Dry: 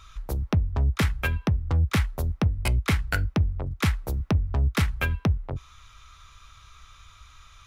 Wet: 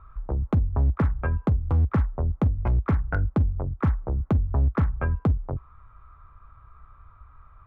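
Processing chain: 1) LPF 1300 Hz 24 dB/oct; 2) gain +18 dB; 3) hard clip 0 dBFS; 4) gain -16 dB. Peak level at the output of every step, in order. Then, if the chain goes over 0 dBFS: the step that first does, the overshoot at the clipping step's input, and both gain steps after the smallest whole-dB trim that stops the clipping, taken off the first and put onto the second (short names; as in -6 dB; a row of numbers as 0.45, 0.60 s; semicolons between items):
-14.0, +4.0, 0.0, -16.0 dBFS; step 2, 4.0 dB; step 2 +14 dB, step 4 -12 dB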